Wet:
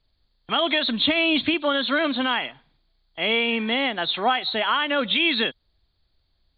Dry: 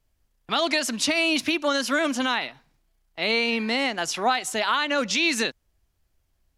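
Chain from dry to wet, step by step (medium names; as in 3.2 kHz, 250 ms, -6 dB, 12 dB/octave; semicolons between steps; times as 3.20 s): knee-point frequency compression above 3.1 kHz 4:1; 0.87–1.54 s: bass shelf 150 Hz +10 dB; trim +1 dB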